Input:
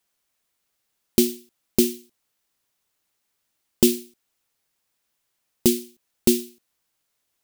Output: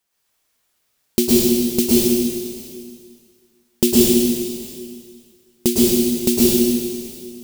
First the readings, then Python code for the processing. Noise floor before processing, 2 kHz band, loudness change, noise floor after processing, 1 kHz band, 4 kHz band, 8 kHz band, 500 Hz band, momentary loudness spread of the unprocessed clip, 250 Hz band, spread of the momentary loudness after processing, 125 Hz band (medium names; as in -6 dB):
-76 dBFS, +7.5 dB, +6.0 dB, -69 dBFS, +7.5 dB, +8.0 dB, +8.0 dB, +8.0 dB, 15 LU, +8.5 dB, 18 LU, +7.5 dB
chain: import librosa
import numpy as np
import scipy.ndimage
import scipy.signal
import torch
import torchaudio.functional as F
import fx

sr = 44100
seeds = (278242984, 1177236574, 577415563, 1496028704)

y = x + 10.0 ** (-23.0 / 20.0) * np.pad(x, (int(674 * sr / 1000.0), 0))[:len(x)]
y = fx.rev_plate(y, sr, seeds[0], rt60_s=1.9, hf_ratio=1.0, predelay_ms=95, drr_db=-7.0)